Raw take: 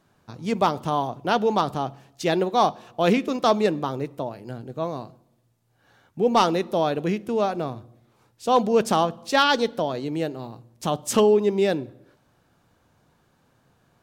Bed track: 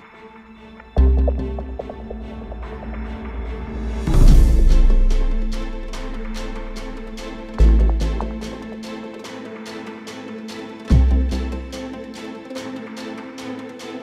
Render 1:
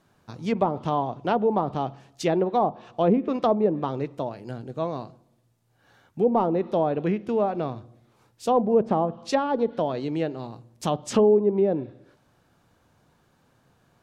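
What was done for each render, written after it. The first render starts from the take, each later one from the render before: dynamic EQ 1500 Hz, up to -5 dB, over -35 dBFS, Q 1.8; treble ducked by the level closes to 810 Hz, closed at -16.5 dBFS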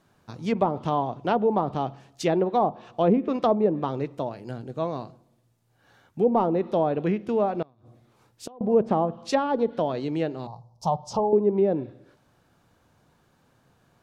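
7.62–8.61 flipped gate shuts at -22 dBFS, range -27 dB; 10.47–11.33 EQ curve 170 Hz 0 dB, 270 Hz -19 dB, 900 Hz +8 dB, 1800 Hz -29 dB, 3600 Hz -11 dB, 5300 Hz 0 dB, 7700 Hz -12 dB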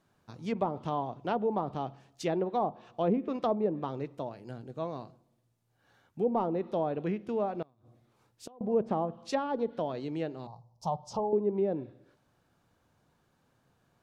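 gain -7.5 dB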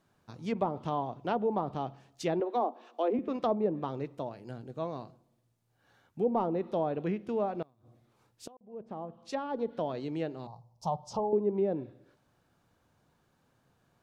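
2.4–3.19 steep high-pass 230 Hz 96 dB/oct; 8.57–9.86 fade in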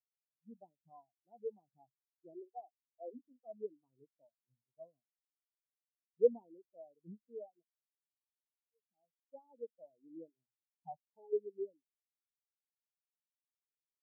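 vocal rider within 3 dB 0.5 s; spectral expander 4:1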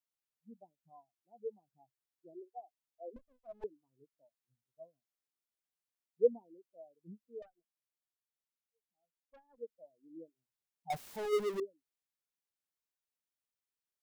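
3.16–3.64 minimum comb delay 1.5 ms; 7.42–9.58 tube stage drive 56 dB, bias 0.65; 10.9–11.6 power-law curve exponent 0.35

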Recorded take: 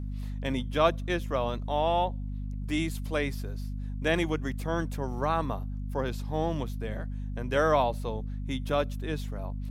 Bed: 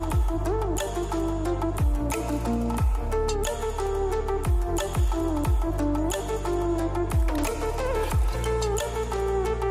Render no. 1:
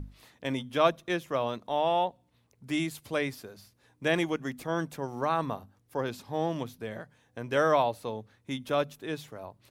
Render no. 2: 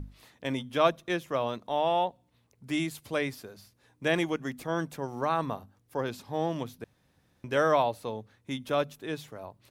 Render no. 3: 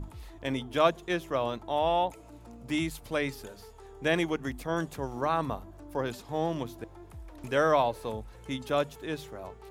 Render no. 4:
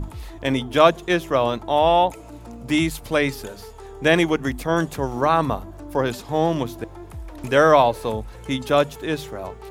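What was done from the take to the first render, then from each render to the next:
notches 50/100/150/200/250 Hz
6.84–7.44 room tone
add bed -22.5 dB
gain +10 dB; limiter -1 dBFS, peak gain reduction 1 dB

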